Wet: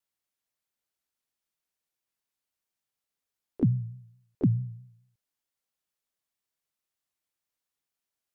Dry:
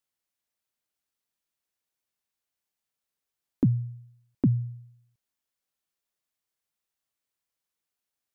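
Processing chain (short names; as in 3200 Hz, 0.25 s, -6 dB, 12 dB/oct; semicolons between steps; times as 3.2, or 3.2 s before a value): harmoniser +7 st -15 dB; vibrato 4.6 Hz 86 cents; gain -1.5 dB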